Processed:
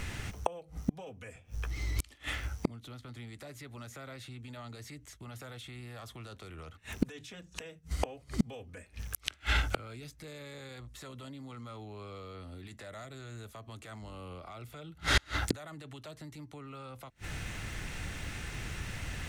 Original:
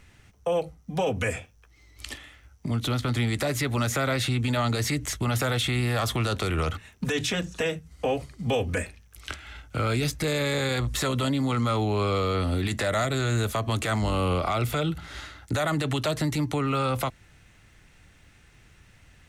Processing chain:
0:01.35–0:02.13: low-shelf EQ 220 Hz +7.5 dB
gate with flip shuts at −29 dBFS, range −36 dB
level +15.5 dB

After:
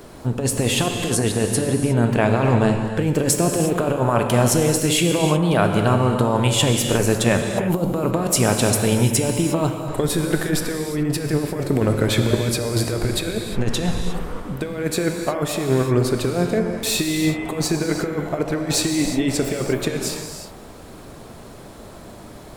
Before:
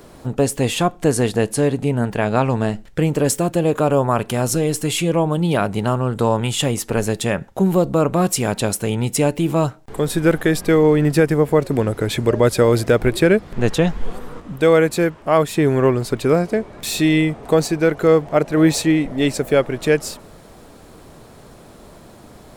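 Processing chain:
compressor whose output falls as the input rises −18 dBFS, ratio −0.5
reverb whose tail is shaped and stops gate 380 ms flat, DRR 3.5 dB
level −1 dB

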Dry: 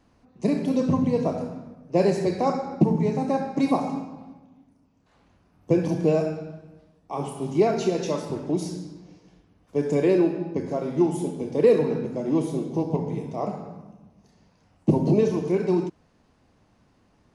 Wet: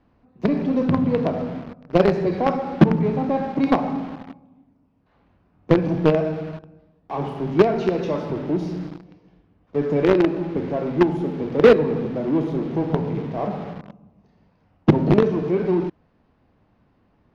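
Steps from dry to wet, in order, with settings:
in parallel at −9 dB: log-companded quantiser 2 bits
on the sum: high-frequency loss of the air 280 metres
level +1 dB

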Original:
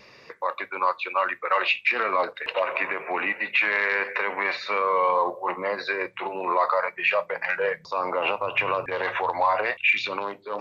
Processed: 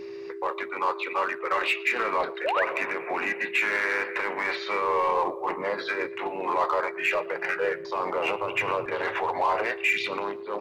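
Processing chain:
echo with shifted repeats 116 ms, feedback 40%, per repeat +40 Hz, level −22 dB
steady tone 400 Hz −34 dBFS
in parallel at −4.5 dB: gain into a clipping stage and back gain 23 dB
on the sum: pitch-shifted copies added −3 semitones −8 dB
sound drawn into the spectrogram rise, 0:02.44–0:02.65, 480–2,200 Hz −20 dBFS
level −6 dB

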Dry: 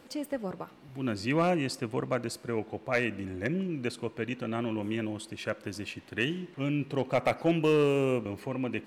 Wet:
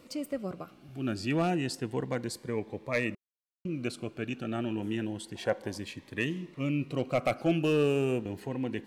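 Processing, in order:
0:03.15–0:03.65: silence
0:05.35–0:05.78: parametric band 710 Hz +15 dB 0.86 octaves
phaser whose notches keep moving one way rising 0.3 Hz

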